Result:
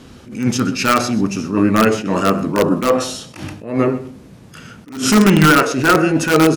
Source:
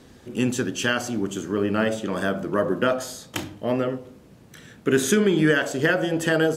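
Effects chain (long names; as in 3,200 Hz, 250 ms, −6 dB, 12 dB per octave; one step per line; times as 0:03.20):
dynamic equaliser 1,200 Hz, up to +3 dB, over −32 dBFS, Q 0.9
formants moved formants −3 semitones
single-tap delay 127 ms −17 dB
in parallel at −4 dB: wrap-around overflow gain 11.5 dB
on the sum: level that may rise only so fast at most 120 dB per second
level +5 dB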